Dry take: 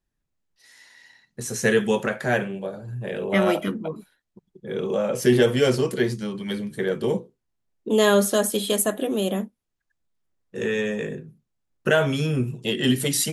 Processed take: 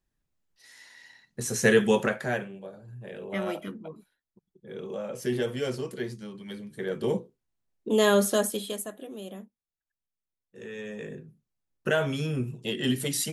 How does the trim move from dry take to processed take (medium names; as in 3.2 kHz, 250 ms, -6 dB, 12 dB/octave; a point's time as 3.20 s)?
2.05 s -0.5 dB
2.50 s -11 dB
6.66 s -11 dB
7.08 s -3.5 dB
8.40 s -3.5 dB
8.93 s -16 dB
10.67 s -16 dB
11.22 s -6 dB